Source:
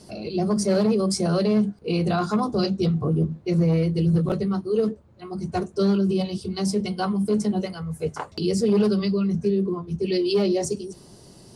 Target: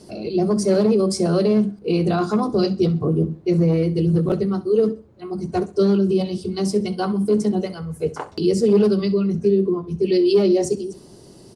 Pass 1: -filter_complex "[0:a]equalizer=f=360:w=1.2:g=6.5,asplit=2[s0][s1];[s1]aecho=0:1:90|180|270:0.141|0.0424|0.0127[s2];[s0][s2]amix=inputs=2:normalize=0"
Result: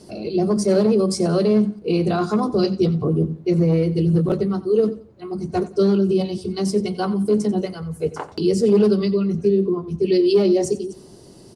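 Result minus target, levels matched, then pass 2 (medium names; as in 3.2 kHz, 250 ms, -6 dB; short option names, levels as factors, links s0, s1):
echo 25 ms late
-filter_complex "[0:a]equalizer=f=360:w=1.2:g=6.5,asplit=2[s0][s1];[s1]aecho=0:1:65|130|195:0.141|0.0424|0.0127[s2];[s0][s2]amix=inputs=2:normalize=0"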